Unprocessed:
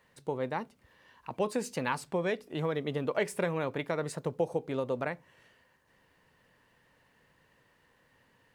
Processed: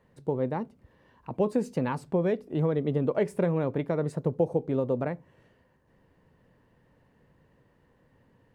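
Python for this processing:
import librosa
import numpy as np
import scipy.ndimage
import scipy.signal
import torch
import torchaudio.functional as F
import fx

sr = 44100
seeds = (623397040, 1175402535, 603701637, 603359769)

y = fx.tilt_shelf(x, sr, db=9.0, hz=880.0)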